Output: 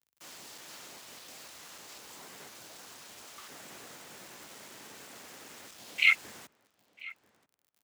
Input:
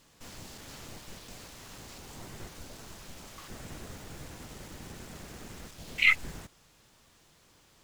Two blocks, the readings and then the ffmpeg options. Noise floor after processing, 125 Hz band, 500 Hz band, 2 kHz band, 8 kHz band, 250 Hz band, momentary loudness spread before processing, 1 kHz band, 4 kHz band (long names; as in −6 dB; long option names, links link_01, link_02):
−77 dBFS, −17.0 dB, −4.0 dB, −0.5 dB, +0.5 dB, −9.0 dB, 21 LU, −1.0 dB, +0.5 dB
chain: -filter_complex "[0:a]highpass=frequency=630:poles=1,acrusher=bits=8:mix=0:aa=0.000001,afreqshift=52,asplit=2[link_01][link_02];[link_02]adelay=991,lowpass=frequency=1900:poles=1,volume=-17.5dB,asplit=2[link_03][link_04];[link_04]adelay=991,lowpass=frequency=1900:poles=1,volume=0.16[link_05];[link_03][link_05]amix=inputs=2:normalize=0[link_06];[link_01][link_06]amix=inputs=2:normalize=0"